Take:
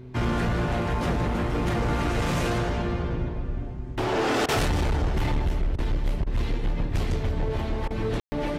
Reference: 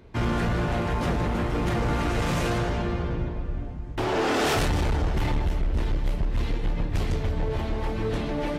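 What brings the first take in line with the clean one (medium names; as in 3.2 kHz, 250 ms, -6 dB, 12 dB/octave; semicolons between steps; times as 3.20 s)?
de-hum 126 Hz, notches 3; room tone fill 8.20–8.32 s; interpolate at 4.46/5.76/6.24/7.88 s, 24 ms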